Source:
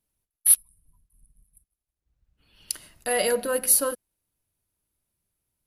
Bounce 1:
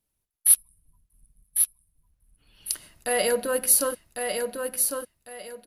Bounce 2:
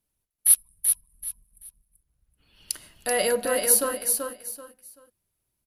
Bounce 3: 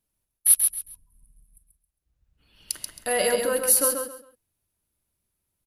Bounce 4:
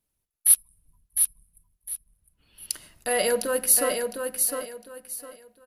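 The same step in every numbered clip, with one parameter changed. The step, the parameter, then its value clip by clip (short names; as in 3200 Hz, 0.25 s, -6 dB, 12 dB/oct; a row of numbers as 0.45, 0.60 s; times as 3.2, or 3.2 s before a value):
feedback echo, time: 1.101, 0.384, 0.135, 0.707 s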